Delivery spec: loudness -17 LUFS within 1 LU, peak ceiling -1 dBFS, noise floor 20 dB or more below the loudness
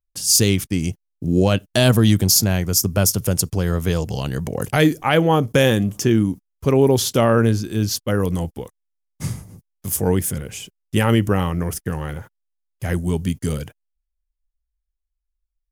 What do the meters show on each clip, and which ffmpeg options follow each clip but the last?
loudness -19.0 LUFS; peak level -4.0 dBFS; loudness target -17.0 LUFS
-> -af "volume=1.26"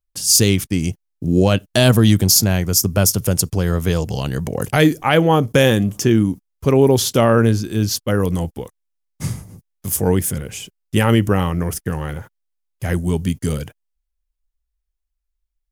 loudness -17.0 LUFS; peak level -2.0 dBFS; noise floor -76 dBFS

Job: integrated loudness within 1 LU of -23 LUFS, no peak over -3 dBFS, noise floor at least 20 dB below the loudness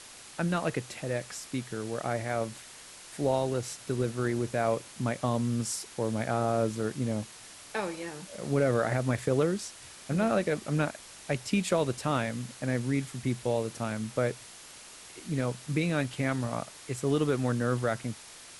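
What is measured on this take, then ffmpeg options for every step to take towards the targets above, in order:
noise floor -49 dBFS; noise floor target -51 dBFS; loudness -31.0 LUFS; peak level -14.0 dBFS; loudness target -23.0 LUFS
-> -af "afftdn=nr=6:nf=-49"
-af "volume=2.51"

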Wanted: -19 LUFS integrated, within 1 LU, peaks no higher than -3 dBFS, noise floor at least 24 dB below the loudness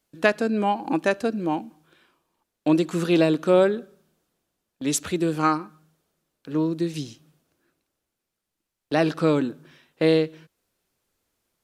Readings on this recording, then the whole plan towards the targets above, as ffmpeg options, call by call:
loudness -23.5 LUFS; peak level -5.0 dBFS; loudness target -19.0 LUFS
-> -af "volume=1.68,alimiter=limit=0.708:level=0:latency=1"

